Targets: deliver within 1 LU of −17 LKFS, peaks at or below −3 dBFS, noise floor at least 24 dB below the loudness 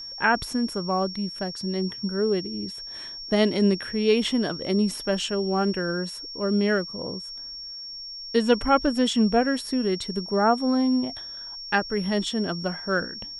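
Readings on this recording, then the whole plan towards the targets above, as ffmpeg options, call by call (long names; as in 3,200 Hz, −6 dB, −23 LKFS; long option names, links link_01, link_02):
interfering tone 5,500 Hz; level of the tone −35 dBFS; integrated loudness −25.0 LKFS; sample peak −8.0 dBFS; target loudness −17.0 LKFS
→ -af "bandreject=frequency=5500:width=30"
-af "volume=8dB,alimiter=limit=-3dB:level=0:latency=1"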